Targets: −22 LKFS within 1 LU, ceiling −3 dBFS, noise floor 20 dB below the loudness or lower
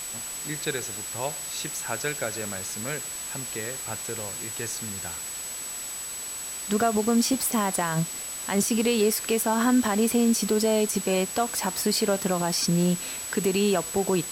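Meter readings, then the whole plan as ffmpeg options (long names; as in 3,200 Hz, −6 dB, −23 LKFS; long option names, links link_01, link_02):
interfering tone 7,900 Hz; level of the tone −34 dBFS; background noise floor −35 dBFS; target noise floor −46 dBFS; integrated loudness −26.0 LKFS; sample peak −10.5 dBFS; target loudness −22.0 LKFS
→ -af "bandreject=frequency=7900:width=30"
-af "afftdn=noise_reduction=11:noise_floor=-35"
-af "volume=4dB"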